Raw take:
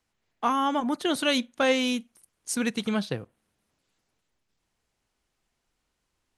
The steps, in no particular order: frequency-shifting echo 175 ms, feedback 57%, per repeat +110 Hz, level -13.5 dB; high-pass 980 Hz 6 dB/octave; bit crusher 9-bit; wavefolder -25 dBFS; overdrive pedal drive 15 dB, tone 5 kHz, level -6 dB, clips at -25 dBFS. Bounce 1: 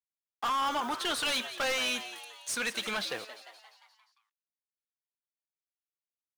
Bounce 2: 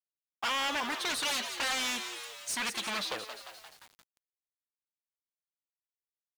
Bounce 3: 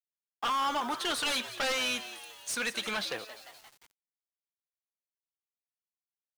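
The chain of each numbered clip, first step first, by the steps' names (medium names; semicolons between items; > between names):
bit crusher > high-pass > overdrive pedal > frequency-shifting echo > wavefolder; wavefolder > high-pass > frequency-shifting echo > overdrive pedal > bit crusher; high-pass > wavefolder > overdrive pedal > frequency-shifting echo > bit crusher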